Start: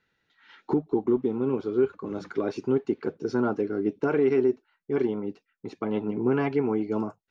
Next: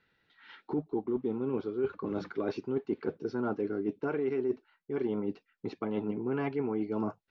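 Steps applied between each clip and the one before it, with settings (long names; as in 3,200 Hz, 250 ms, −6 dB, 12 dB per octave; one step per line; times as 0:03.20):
low-pass filter 5,000 Hz 24 dB per octave
reversed playback
downward compressor, threshold −30 dBFS, peak gain reduction 12 dB
reversed playback
level +1.5 dB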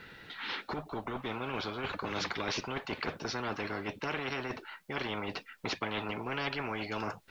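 every bin compressed towards the loudest bin 4 to 1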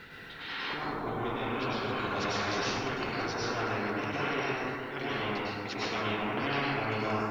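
dense smooth reverb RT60 1.8 s, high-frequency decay 0.45×, pre-delay 90 ms, DRR −8.5 dB
reversed playback
upward compression, threshold −35 dBFS
reversed playback
level −4.5 dB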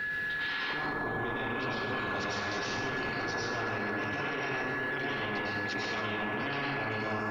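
steady tone 1,700 Hz −35 dBFS
brickwall limiter −28.5 dBFS, peak gain reduction 10 dB
level +3.5 dB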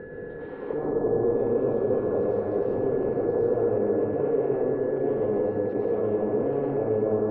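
low-pass with resonance 480 Hz, resonance Q 4.9
level +5 dB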